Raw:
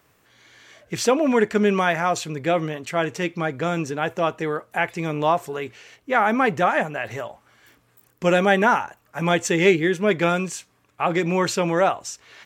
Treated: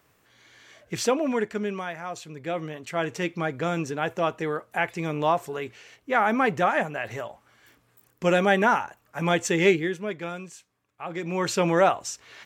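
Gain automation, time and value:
0.98 s -3 dB
1.97 s -14 dB
3.16 s -3 dB
9.7 s -3 dB
10.17 s -13.5 dB
11.05 s -13.5 dB
11.62 s -0.5 dB

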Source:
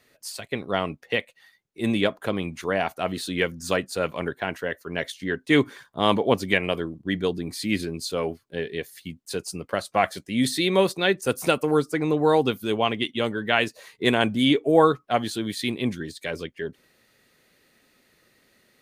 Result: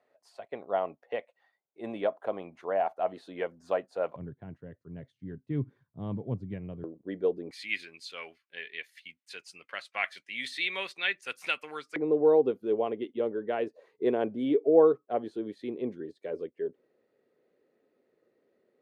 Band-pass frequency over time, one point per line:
band-pass, Q 2.4
690 Hz
from 4.16 s 120 Hz
from 6.84 s 500 Hz
from 7.51 s 2300 Hz
from 11.96 s 440 Hz

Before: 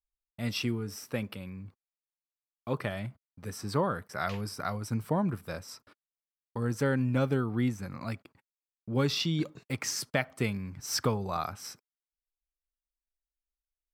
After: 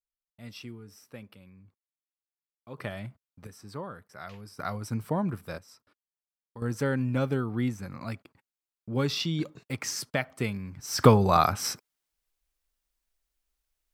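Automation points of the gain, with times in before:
-11.5 dB
from 2.78 s -2 dB
from 3.47 s -10 dB
from 4.59 s 0 dB
from 5.58 s -9 dB
from 6.62 s 0 dB
from 10.99 s +11.5 dB

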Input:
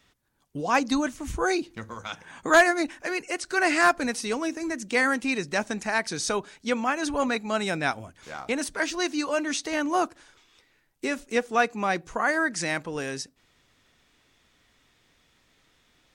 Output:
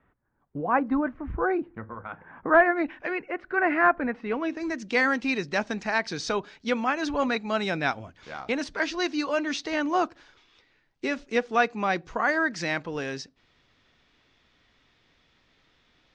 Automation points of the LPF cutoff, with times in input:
LPF 24 dB/oct
2.56 s 1700 Hz
3.03 s 3400 Hz
3.27 s 2000 Hz
4.21 s 2000 Hz
4.67 s 5200 Hz

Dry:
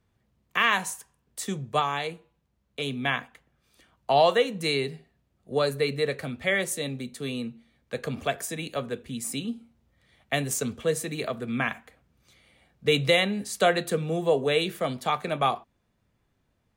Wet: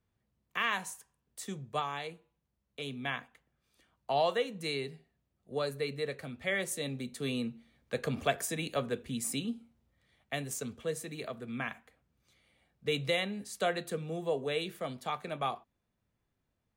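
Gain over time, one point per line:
6.28 s -9 dB
7.31 s -2 dB
9.2 s -2 dB
10.33 s -9.5 dB

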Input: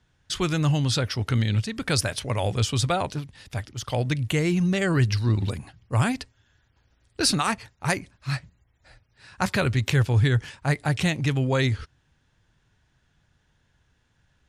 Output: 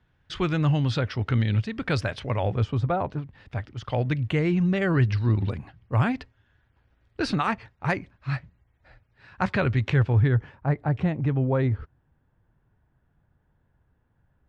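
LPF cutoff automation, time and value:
2.29 s 2700 Hz
2.82 s 1100 Hz
3.7 s 2400 Hz
9.87 s 2400 Hz
10.56 s 1100 Hz

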